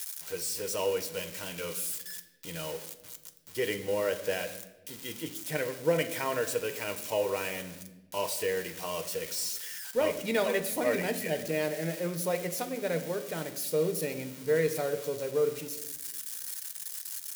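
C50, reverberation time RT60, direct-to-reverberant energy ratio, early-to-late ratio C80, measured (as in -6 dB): 12.5 dB, 1.1 s, 7.0 dB, 14.5 dB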